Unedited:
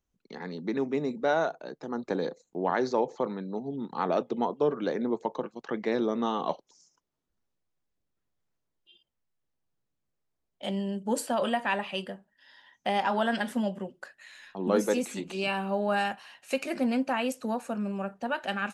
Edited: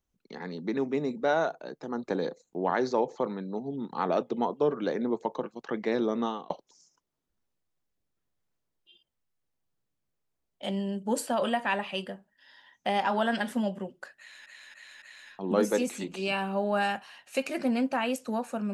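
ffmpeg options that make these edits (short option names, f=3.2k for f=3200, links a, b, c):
-filter_complex "[0:a]asplit=5[a][b][c][d][e];[a]atrim=end=6.5,asetpts=PTS-STARTPTS,afade=t=out:st=6.22:d=0.28[f];[b]atrim=start=6.5:end=14.462,asetpts=PTS-STARTPTS,afade=t=in:d=0.004:c=hsin[g];[c]atrim=start=14.178:end=14.462[h];[d]atrim=start=14.178:end=14.462[i];[e]atrim=start=14.178[j];[f][g]concat=n=2:v=0:a=1[k];[k][h]acrossfade=d=0.004:c1=hsin:c2=hsin[l];[l][i]acrossfade=d=0.004:c1=hsin:c2=hsin[m];[m][j]acrossfade=d=0.004:c1=hsin:c2=hsin"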